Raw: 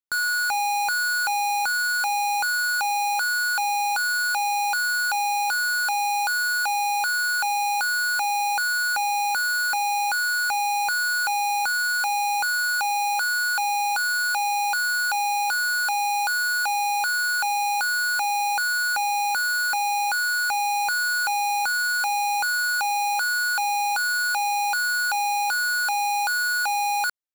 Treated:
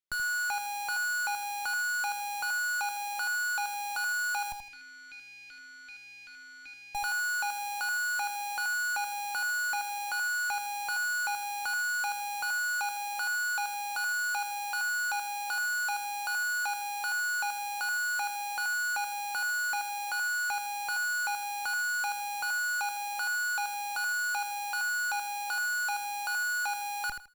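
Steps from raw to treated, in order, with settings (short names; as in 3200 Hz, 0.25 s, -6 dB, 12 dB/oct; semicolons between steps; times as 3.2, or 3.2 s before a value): bell 2600 Hz +4.5 dB 2.3 oct; limiter -21 dBFS, peak gain reduction 3 dB; 4.52–6.95 vowel filter i; tube stage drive 31 dB, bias 0.7; feedback echo 80 ms, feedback 22%, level -7 dB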